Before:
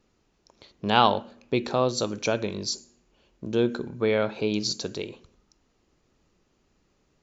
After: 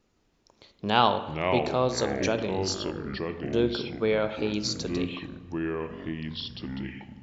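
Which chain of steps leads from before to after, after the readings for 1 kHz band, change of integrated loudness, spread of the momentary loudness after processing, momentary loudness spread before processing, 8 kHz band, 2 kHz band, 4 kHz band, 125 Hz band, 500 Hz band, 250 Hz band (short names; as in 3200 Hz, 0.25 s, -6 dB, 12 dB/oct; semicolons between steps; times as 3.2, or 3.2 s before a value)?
-1.0 dB, -2.0 dB, 11 LU, 13 LU, n/a, 0.0 dB, -1.0 dB, +1.5 dB, -0.5 dB, +0.5 dB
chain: spring tank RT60 1.2 s, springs 31/41/48 ms, chirp 65 ms, DRR 11.5 dB; echoes that change speed 0.165 s, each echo -5 st, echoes 3, each echo -6 dB; gain -2 dB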